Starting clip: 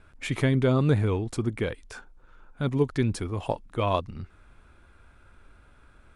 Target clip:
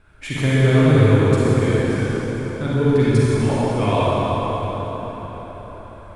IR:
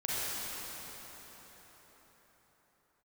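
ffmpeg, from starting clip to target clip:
-filter_complex "[1:a]atrim=start_sample=2205[a];[0:a][a]afir=irnorm=-1:irlink=0,volume=2dB"

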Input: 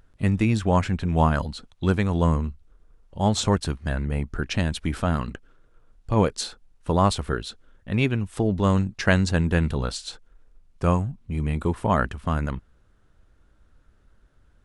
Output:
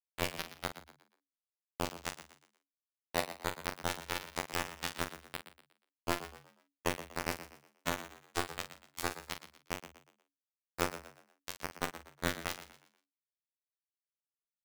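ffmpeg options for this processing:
-filter_complex "[0:a]afftfilt=real='re':imag='-im':win_size=2048:overlap=0.75,lowpass=7.2k,bandreject=f=60:t=h:w=6,bandreject=f=120:t=h:w=6,bandreject=f=180:t=h:w=6,bandreject=f=240:t=h:w=6,bandreject=f=300:t=h:w=6,agate=range=-56dB:threshold=-51dB:ratio=16:detection=peak,equalizer=f=630:w=0.94:g=14.5,acontrast=52,alimiter=limit=-11.5dB:level=0:latency=1:release=65,acompressor=threshold=-31dB:ratio=5,acrusher=bits=3:mix=0:aa=0.000001,afftfilt=real='hypot(re,im)*cos(PI*b)':imag='0':win_size=2048:overlap=0.75,asplit=2[a][b];[b]adelay=43,volume=-9.5dB[c];[a][c]amix=inputs=2:normalize=0,asplit=2[d][e];[e]asplit=4[f][g][h][i];[f]adelay=120,afreqshift=70,volume=-13dB[j];[g]adelay=240,afreqshift=140,volume=-21.9dB[k];[h]adelay=360,afreqshift=210,volume=-30.7dB[l];[i]adelay=480,afreqshift=280,volume=-39.6dB[m];[j][k][l][m]amix=inputs=4:normalize=0[n];[d][n]amix=inputs=2:normalize=0,volume=4.5dB"

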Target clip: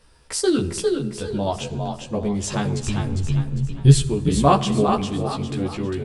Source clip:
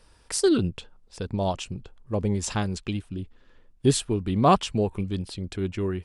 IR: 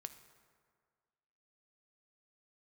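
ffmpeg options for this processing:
-filter_complex "[0:a]asplit=3[a][b][c];[a]afade=t=out:st=2.81:d=0.02[d];[b]asubboost=boost=11:cutoff=97,afade=t=in:st=2.81:d=0.02,afade=t=out:st=4.06:d=0.02[e];[c]afade=t=in:st=4.06:d=0.02[f];[d][e][f]amix=inputs=3:normalize=0,asplit=6[g][h][i][j][k][l];[h]adelay=402,afreqshift=37,volume=-5dB[m];[i]adelay=804,afreqshift=74,volume=-13.6dB[n];[j]adelay=1206,afreqshift=111,volume=-22.3dB[o];[k]adelay=1608,afreqshift=148,volume=-30.9dB[p];[l]adelay=2010,afreqshift=185,volume=-39.5dB[q];[g][m][n][o][p][q]amix=inputs=6:normalize=0,asplit=2[r][s];[1:a]atrim=start_sample=2205,adelay=14[t];[s][t]afir=irnorm=-1:irlink=0,volume=3.5dB[u];[r][u]amix=inputs=2:normalize=0"

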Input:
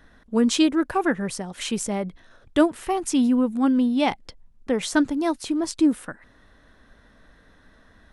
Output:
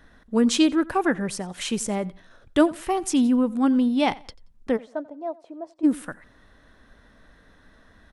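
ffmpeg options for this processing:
-filter_complex "[0:a]asplit=3[a][b][c];[a]afade=t=out:st=4.76:d=0.02[d];[b]bandpass=f=620:t=q:w=4.1:csg=0,afade=t=in:st=4.76:d=0.02,afade=t=out:st=5.83:d=0.02[e];[c]afade=t=in:st=5.83:d=0.02[f];[d][e][f]amix=inputs=3:normalize=0,asplit=2[g][h];[h]aecho=0:1:89|178:0.0794|0.0222[i];[g][i]amix=inputs=2:normalize=0"

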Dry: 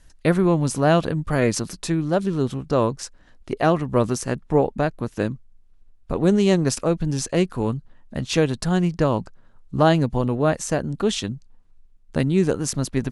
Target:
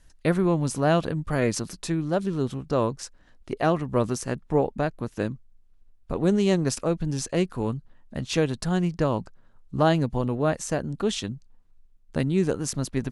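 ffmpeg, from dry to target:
-af "volume=-4dB"

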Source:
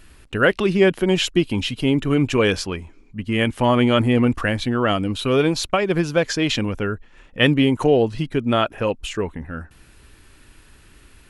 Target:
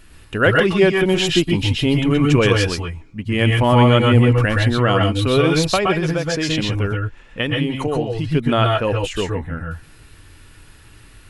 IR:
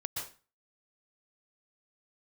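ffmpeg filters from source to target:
-filter_complex "[0:a]asettb=1/sr,asplit=3[a][b][c];[a]atrim=end=5.974[d];[b]atrim=start=5.97:end=8.24,asetpts=PTS-STARTPTS,afade=t=in:d=0.004:c=qsin,afade=t=out:st=2.266:d=0.004:c=qsin,acompressor=threshold=-20dB:ratio=6[e];[c]atrim=start=8.236[f];[d][e]acrossfade=d=0.004:c1=hsin:c2=qsin[g];[g][f]acrossfade=d=0.004:c1=qsin:c2=hsin[h];[1:a]atrim=start_sample=2205,afade=t=out:st=0.19:d=0.01,atrim=end_sample=8820[i];[h][i]afir=irnorm=-1:irlink=0,volume=3dB"

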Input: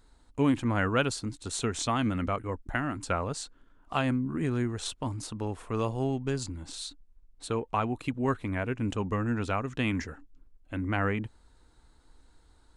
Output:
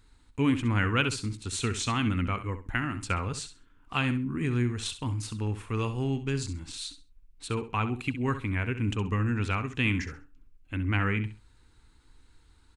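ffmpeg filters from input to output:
-filter_complex "[0:a]equalizer=f=100:t=o:w=0.67:g=5,equalizer=f=630:t=o:w=0.67:g=-11,equalizer=f=2.5k:t=o:w=0.67:g=7,asplit=2[a][b];[b]aecho=0:1:66|132|198:0.266|0.0585|0.0129[c];[a][c]amix=inputs=2:normalize=0"

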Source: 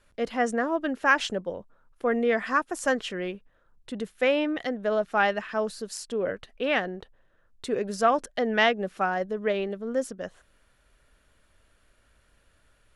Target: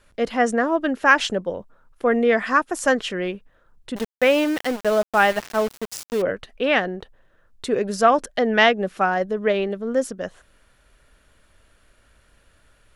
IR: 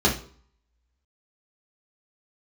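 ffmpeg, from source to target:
-filter_complex "[0:a]asettb=1/sr,asplit=3[a][b][c];[a]atrim=end=3.964[d];[b]atrim=start=3.96:end=6.22,asetpts=PTS-STARTPTS,afade=t=in:d=0.004:c=qsin,afade=t=out:st=2.256:d=0.004:c=qsin,aeval=exprs='val(0)*gte(abs(val(0)),0.0211)':c=same[e];[c]atrim=start=6.216[f];[d][e]acrossfade=d=0.004:c1=hsin:c2=qsin[g];[g][f]acrossfade=d=0.004:c1=qsin:c2=hsin,volume=6dB"

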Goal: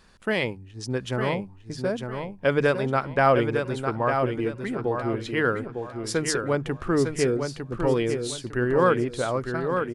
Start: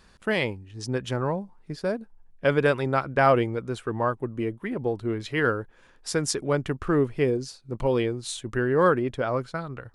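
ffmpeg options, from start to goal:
-af "bandreject=f=50:t=h:w=6,bandreject=f=100:t=h:w=6,bandreject=f=150:t=h:w=6,aecho=1:1:904|1808|2712|3616:0.501|0.155|0.0482|0.0149"

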